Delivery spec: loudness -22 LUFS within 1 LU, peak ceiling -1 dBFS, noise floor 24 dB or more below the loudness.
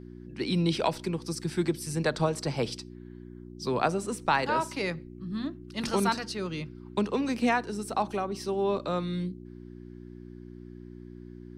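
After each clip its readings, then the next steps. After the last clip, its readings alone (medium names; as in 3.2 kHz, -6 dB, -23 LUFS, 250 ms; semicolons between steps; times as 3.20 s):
hum 60 Hz; highest harmonic 360 Hz; hum level -43 dBFS; loudness -30.0 LUFS; peak level -12.5 dBFS; loudness target -22.0 LUFS
-> de-hum 60 Hz, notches 6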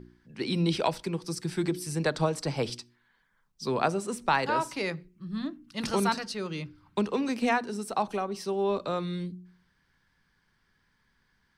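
hum not found; loudness -30.5 LUFS; peak level -12.0 dBFS; loudness target -22.0 LUFS
-> trim +8.5 dB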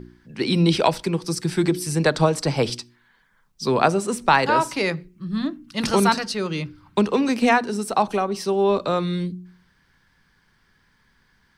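loudness -22.0 LUFS; peak level -3.5 dBFS; noise floor -63 dBFS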